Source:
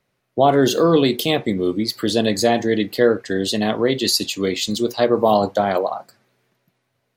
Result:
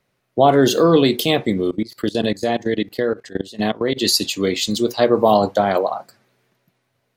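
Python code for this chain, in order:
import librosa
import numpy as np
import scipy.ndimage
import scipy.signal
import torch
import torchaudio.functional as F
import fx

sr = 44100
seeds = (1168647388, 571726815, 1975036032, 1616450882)

y = fx.level_steps(x, sr, step_db=20, at=(1.61, 3.96), fade=0.02)
y = y * 10.0 ** (1.5 / 20.0)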